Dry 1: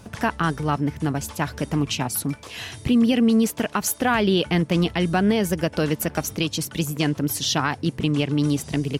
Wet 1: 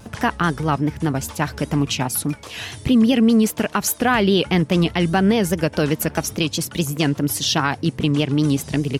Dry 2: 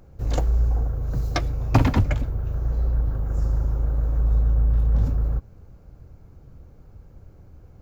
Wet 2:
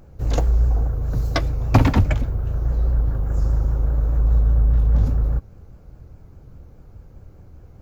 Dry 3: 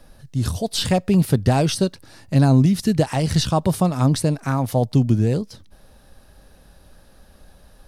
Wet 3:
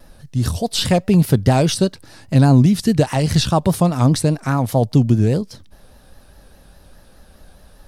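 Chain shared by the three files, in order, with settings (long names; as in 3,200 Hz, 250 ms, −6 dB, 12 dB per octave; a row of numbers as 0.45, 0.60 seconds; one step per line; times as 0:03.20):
pitch vibrato 4.9 Hz 81 cents
level +3 dB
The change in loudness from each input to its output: +3.0, +3.0, +3.0 LU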